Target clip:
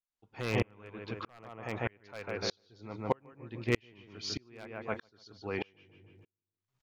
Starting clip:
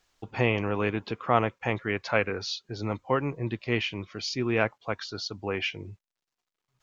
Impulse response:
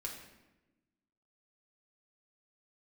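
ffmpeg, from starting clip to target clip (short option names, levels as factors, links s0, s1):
-filter_complex "[0:a]asplit=2[s0][s1];[s1]adelay=148,lowpass=f=2400:p=1,volume=0.631,asplit=2[s2][s3];[s3]adelay=148,lowpass=f=2400:p=1,volume=0.37,asplit=2[s4][s5];[s5]adelay=148,lowpass=f=2400:p=1,volume=0.37,asplit=2[s6][s7];[s7]adelay=148,lowpass=f=2400:p=1,volume=0.37,asplit=2[s8][s9];[s9]adelay=148,lowpass=f=2400:p=1,volume=0.37[s10];[s0][s2][s4][s6][s8][s10]amix=inputs=6:normalize=0,aeval=exprs='0.2*(abs(mod(val(0)/0.2+3,4)-2)-1)':c=same,aeval=exprs='val(0)*pow(10,-37*if(lt(mod(-1.6*n/s,1),2*abs(-1.6)/1000),1-mod(-1.6*n/s,1)/(2*abs(-1.6)/1000),(mod(-1.6*n/s,1)-2*abs(-1.6)/1000)/(1-2*abs(-1.6)/1000))/20)':c=same"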